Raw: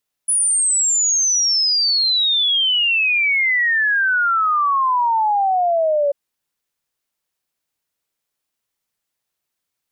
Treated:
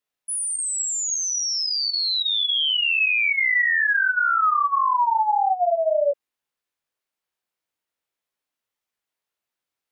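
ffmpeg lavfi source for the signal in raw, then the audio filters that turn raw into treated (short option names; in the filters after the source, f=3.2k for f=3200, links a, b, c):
-f lavfi -i "aevalsrc='0.2*clip(min(t,5.84-t)/0.01,0,1)*sin(2*PI*10000*5.84/log(560/10000)*(exp(log(560/10000)*t/5.84)-1))':d=5.84:s=44100"
-af "bass=f=250:g=-6,treble=f=4k:g=-6,flanger=delay=15.5:depth=7.1:speed=1.8"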